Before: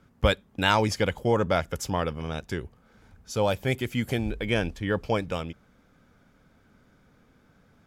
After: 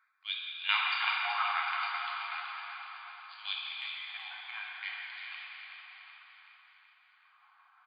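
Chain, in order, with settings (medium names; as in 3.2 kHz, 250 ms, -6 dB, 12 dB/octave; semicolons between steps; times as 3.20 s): local Wiener filter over 15 samples; FFT band-pass 710–4900 Hz; de-esser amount 55%; slow attack 136 ms; LFO high-pass sine 0.63 Hz 960–3400 Hz; tremolo saw down 5.8 Hz, depth 65%; small resonant body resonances 1.1/2.4 kHz, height 14 dB, ringing for 90 ms; 3.53–4.73 s: compression 3:1, threshold -41 dBFS, peak gain reduction 10 dB; feedback delay 377 ms, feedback 57%, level -8.5 dB; plate-style reverb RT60 4 s, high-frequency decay 0.75×, DRR -4 dB; trim -1.5 dB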